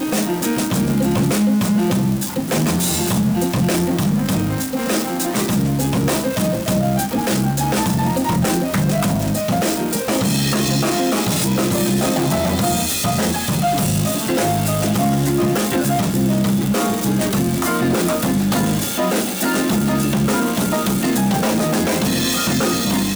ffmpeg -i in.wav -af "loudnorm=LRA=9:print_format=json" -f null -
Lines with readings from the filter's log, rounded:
"input_i" : "-18.1",
"input_tp" : "-6.4",
"input_lra" : "1.0",
"input_thresh" : "-28.1",